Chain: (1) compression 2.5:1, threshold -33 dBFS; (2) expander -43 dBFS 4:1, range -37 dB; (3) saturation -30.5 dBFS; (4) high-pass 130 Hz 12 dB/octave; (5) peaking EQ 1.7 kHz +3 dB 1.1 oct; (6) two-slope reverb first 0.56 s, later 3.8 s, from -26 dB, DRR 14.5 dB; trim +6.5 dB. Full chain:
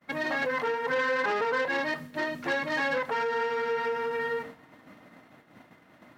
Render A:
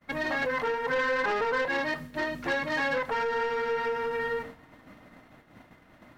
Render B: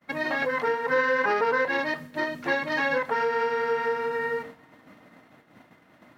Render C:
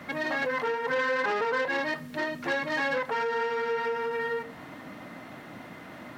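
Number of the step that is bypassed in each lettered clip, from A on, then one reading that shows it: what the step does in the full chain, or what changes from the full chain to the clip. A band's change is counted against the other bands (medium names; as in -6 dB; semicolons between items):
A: 4, 125 Hz band +2.5 dB; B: 3, distortion -13 dB; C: 2, momentary loudness spread change +12 LU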